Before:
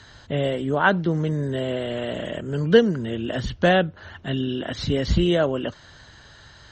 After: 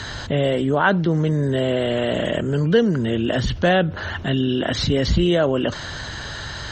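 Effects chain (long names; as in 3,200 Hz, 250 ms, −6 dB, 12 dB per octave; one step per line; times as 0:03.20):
envelope flattener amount 50%
level −2.5 dB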